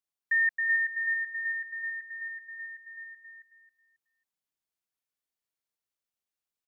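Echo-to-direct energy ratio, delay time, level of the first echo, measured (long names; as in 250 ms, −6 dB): −4.0 dB, 271 ms, −4.5 dB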